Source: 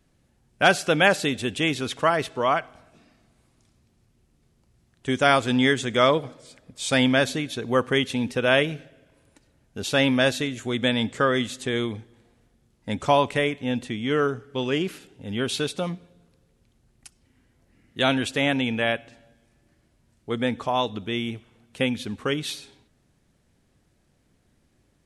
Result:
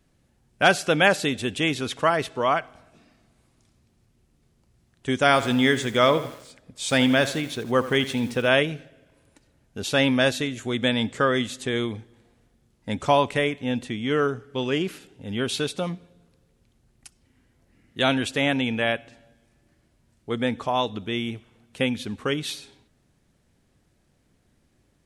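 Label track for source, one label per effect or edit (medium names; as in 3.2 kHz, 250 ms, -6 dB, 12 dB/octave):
5.250000	8.470000	bit-crushed delay 82 ms, feedback 55%, word length 6-bit, level -13.5 dB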